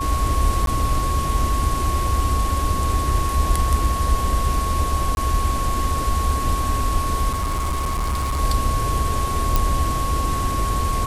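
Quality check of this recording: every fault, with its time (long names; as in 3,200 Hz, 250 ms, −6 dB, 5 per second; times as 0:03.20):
whistle 1,100 Hz −24 dBFS
0:00.66–0:00.67: drop-out 12 ms
0:05.15–0:05.17: drop-out 21 ms
0:07.32–0:08.40: clipping −19 dBFS
0:09.56: click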